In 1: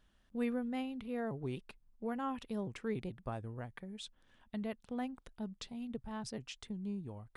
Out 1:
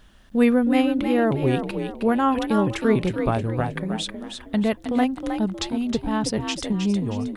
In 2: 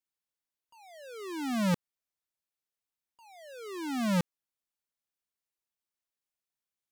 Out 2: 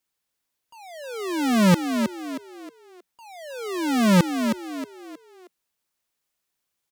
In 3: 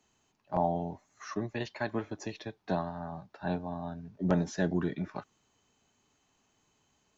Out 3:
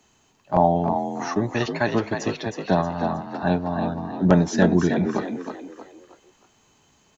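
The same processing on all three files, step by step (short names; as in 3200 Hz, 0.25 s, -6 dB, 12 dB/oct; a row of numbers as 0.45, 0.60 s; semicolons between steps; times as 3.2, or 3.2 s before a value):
frequency-shifting echo 0.315 s, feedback 37%, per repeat +46 Hz, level -7 dB; match loudness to -23 LUFS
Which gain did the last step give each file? +18.0, +11.0, +11.0 dB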